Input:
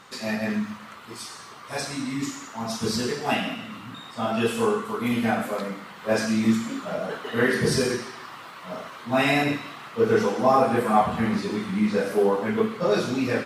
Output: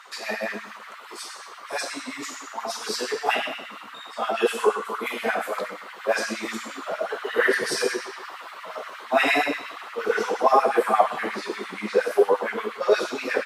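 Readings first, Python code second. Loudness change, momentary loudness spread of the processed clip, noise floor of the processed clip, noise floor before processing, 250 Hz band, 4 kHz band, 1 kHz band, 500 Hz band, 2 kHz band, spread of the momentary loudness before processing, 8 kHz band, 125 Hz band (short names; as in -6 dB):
-0.5 dB, 16 LU, -42 dBFS, -43 dBFS, -9.5 dB, +1.0 dB, +1.5 dB, +0.5 dB, +3.0 dB, 16 LU, 0.0 dB, under -15 dB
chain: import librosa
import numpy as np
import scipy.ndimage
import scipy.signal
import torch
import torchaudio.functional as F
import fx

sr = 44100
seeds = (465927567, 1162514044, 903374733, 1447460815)

y = fx.hum_notches(x, sr, base_hz=60, count=4)
y = fx.filter_lfo_highpass(y, sr, shape='sine', hz=8.5, low_hz=370.0, high_hz=1900.0, q=2.0)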